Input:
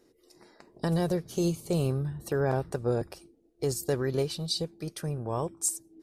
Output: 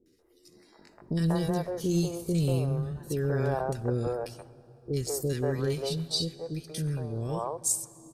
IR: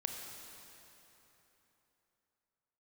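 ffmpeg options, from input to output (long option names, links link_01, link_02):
-filter_complex "[0:a]atempo=0.74,acrossover=split=440|1700[link_01][link_02][link_03];[link_03]adelay=60[link_04];[link_02]adelay=190[link_05];[link_01][link_05][link_04]amix=inputs=3:normalize=0,asplit=2[link_06][link_07];[1:a]atrim=start_sample=2205,lowshelf=frequency=120:gain=9.5,highshelf=frequency=11000:gain=-9[link_08];[link_07][link_08]afir=irnorm=-1:irlink=0,volume=-14.5dB[link_09];[link_06][link_09]amix=inputs=2:normalize=0"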